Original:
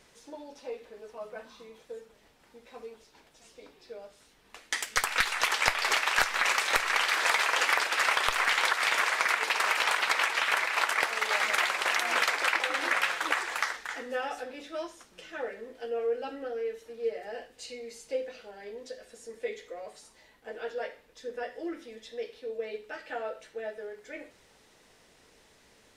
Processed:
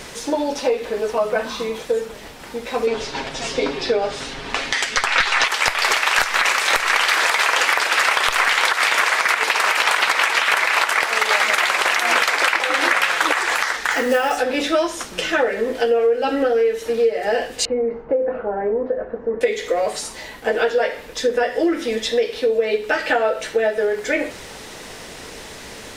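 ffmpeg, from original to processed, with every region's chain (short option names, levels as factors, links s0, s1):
-filter_complex "[0:a]asettb=1/sr,asplit=3[s0][s1][s2];[s0]atrim=end=2.874[s3];[s1]atrim=start=2.87:end=5.48,asetpts=PTS-STARTPTS,afade=t=in:d=0.004:c=qsin,afade=t=out:st=2.606:d=0.004:c=qsin,lowpass=5500,acontrast=80,aecho=1:1:7.4:0.47,atrim=end_sample=115101[s4];[s2]atrim=start=5.476[s5];[s3][s4]acrossfade=d=0.004:c1=hsin:c2=qsin[s6];[s6][s5]acrossfade=d=0.004:c1=qsin:c2=hsin,asettb=1/sr,asplit=3[s7][s8][s9];[s7]atrim=end=13.914[s10];[s8]atrim=start=13.91:end=14.37,asetpts=PTS-STARTPTS,afade=t=in:d=0.004:c=qsin,afade=t=out:st=0.456:d=0.004:c=qsin,bandreject=f=3600:w=14,acrusher=bits=5:mode=log:mix=0:aa=0.000001[s11];[s9]atrim=start=14.366[s12];[s10][s11]acrossfade=d=0.004:c1=hsin:c2=qsin[s13];[s13][s12]acrossfade=d=0.004:c1=qsin:c2=hsin,asettb=1/sr,asplit=3[s14][s15][s16];[s14]atrim=end=17.654[s17];[s15]atrim=start=17.65:end=19.41,asetpts=PTS-STARTPTS,afade=t=in:d=0.004:c=qsin,afade=t=out:st=1.756:d=0.004:c=qsin,lowpass=f=1300:w=0.5412,lowpass=f=1300:w=1.3066,acompressor=threshold=0.00891:ratio=2:attack=3.2:release=140:knee=1:detection=peak[s18];[s16]atrim=start=19.406[s19];[s17][s18]acrossfade=d=0.004:c1=hsin:c2=qsin[s20];[s20][s19]acrossfade=d=0.004:c1=qsin:c2=hsin,acompressor=threshold=0.01:ratio=5,alimiter=level_in=25.1:limit=0.891:release=50:level=0:latency=1,volume=0.668"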